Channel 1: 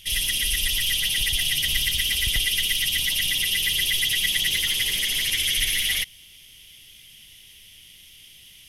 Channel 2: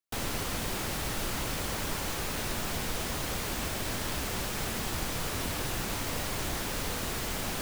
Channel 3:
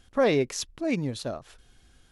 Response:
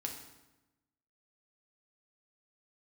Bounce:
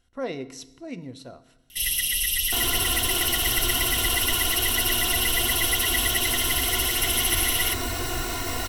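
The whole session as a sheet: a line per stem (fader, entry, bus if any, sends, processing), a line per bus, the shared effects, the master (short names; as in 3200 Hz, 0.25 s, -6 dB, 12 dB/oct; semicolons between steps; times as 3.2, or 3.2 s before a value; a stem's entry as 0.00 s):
-5.5 dB, 1.70 s, no send, high shelf 8300 Hz +10.5 dB
+1.5 dB, 2.40 s, no send, comb 2.8 ms, depth 79%
-12.5 dB, 0.00 s, send -6.5 dB, dry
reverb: on, RT60 1.0 s, pre-delay 4 ms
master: ripple EQ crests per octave 2, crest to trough 8 dB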